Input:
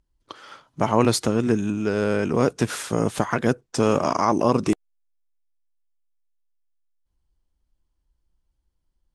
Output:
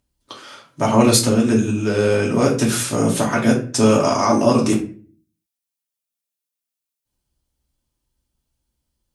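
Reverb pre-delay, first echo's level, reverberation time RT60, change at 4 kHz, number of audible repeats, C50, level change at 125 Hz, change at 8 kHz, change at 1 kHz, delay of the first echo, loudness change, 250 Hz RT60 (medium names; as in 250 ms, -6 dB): 3 ms, no echo, 0.40 s, +8.0 dB, no echo, 8.5 dB, +5.5 dB, +10.5 dB, +3.0 dB, no echo, +5.5 dB, 0.60 s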